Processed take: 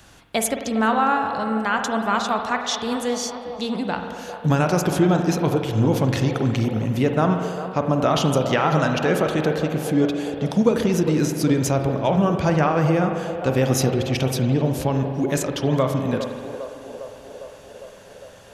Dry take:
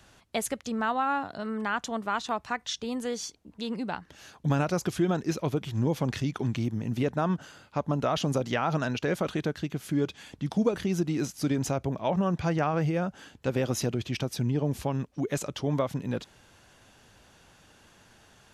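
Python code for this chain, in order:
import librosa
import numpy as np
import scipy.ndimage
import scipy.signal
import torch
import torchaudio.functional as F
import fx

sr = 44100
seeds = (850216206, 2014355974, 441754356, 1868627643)

p1 = fx.high_shelf(x, sr, hz=10000.0, db=5.5)
p2 = p1 + fx.echo_banded(p1, sr, ms=404, feedback_pct=76, hz=590.0, wet_db=-9.5, dry=0)
p3 = fx.rev_spring(p2, sr, rt60_s=1.9, pass_ms=(45,), chirp_ms=40, drr_db=5.0)
y = F.gain(torch.from_numpy(p3), 7.0).numpy()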